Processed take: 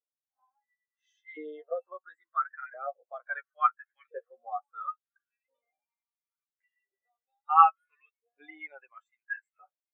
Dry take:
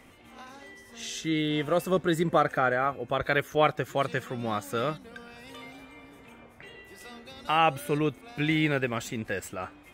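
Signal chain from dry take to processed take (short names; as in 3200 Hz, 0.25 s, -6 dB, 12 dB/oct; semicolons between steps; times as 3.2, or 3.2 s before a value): flange 0.35 Hz, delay 6.6 ms, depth 7 ms, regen +15%; LFO high-pass saw up 0.73 Hz 480–2100 Hz; spectral expander 2.5:1; gain +4.5 dB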